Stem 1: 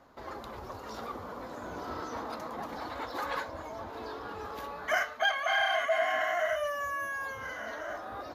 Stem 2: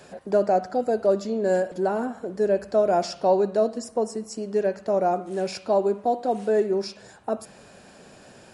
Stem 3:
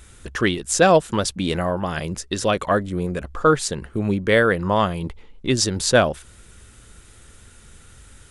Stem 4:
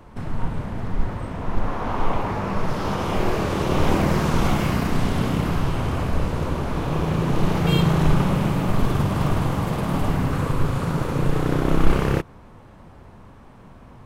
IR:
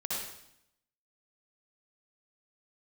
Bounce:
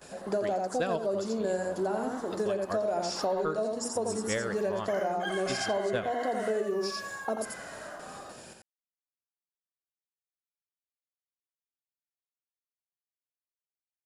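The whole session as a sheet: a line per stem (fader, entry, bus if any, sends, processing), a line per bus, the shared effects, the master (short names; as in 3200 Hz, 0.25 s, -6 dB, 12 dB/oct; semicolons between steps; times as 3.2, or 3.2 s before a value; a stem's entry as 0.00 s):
-5.5 dB, 0.00 s, no send, echo send -5 dB, steep high-pass 190 Hz; notch 2400 Hz, Q 5
-2.0 dB, 0.00 s, no send, echo send -4 dB, gate with hold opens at -39 dBFS; high shelf 6400 Hz +11.5 dB; notches 60/120/180/240/300/360/420 Hz
-5.0 dB, 0.00 s, no send, echo send -14 dB, upward expander 2.5:1, over -25 dBFS
off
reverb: off
echo: echo 86 ms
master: compressor, threshold -27 dBFS, peak gain reduction 12 dB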